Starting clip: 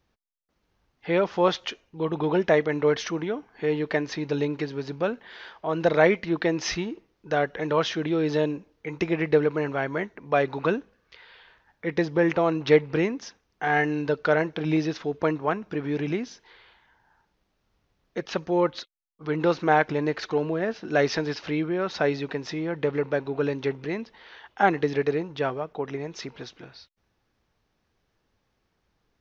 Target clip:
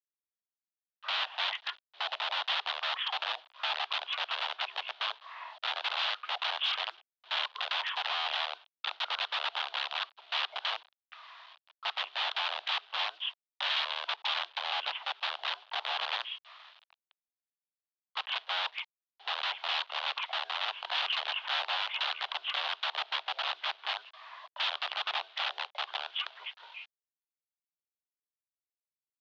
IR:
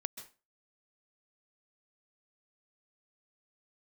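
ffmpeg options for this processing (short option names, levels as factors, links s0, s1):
-af "acompressor=threshold=0.0355:ratio=2,asetrate=22696,aresample=44100,atempo=1.94306,acrusher=bits=8:mix=0:aa=0.000001,aeval=exprs='(mod(23.7*val(0)+1,2)-1)/23.7':c=same,aexciter=amount=3.4:drive=8.2:freq=2800,highpass=f=540:t=q:w=0.5412,highpass=f=540:t=q:w=1.307,lowpass=f=3400:t=q:w=0.5176,lowpass=f=3400:t=q:w=0.7071,lowpass=f=3400:t=q:w=1.932,afreqshift=180"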